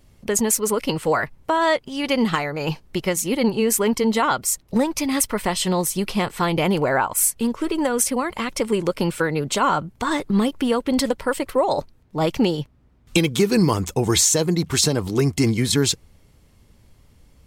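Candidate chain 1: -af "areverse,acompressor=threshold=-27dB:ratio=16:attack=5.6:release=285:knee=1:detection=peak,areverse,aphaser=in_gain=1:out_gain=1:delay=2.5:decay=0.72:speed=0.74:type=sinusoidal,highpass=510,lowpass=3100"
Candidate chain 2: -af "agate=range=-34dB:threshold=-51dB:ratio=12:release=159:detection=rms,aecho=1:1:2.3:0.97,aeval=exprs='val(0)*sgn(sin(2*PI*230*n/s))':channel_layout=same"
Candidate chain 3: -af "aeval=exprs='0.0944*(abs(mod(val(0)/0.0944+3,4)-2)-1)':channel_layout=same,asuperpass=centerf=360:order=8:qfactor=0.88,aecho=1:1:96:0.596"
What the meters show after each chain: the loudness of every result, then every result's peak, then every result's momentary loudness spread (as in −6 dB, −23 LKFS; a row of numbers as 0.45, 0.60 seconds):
−34.0, −18.5, −31.0 LKFS; −14.0, −1.0, −16.5 dBFS; 9, 7, 7 LU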